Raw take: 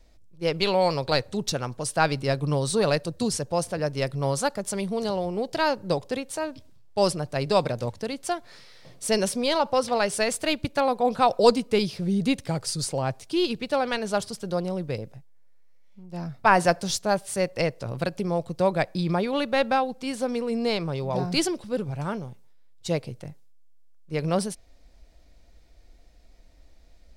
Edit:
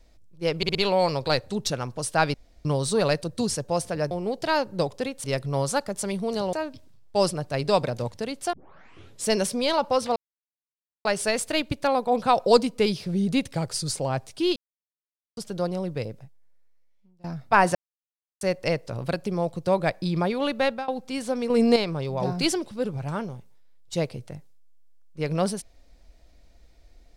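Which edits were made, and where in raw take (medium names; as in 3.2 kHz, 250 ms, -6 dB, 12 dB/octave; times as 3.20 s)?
0.57 s: stutter 0.06 s, 4 plays
2.16–2.47 s: room tone
5.22–6.35 s: move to 3.93 s
8.35 s: tape start 0.74 s
9.98 s: insert silence 0.89 s
13.49–14.30 s: mute
15.03–16.17 s: fade out, to -24 dB
16.68–17.34 s: mute
19.56–19.81 s: fade out, to -20.5 dB
20.43–20.69 s: gain +7.5 dB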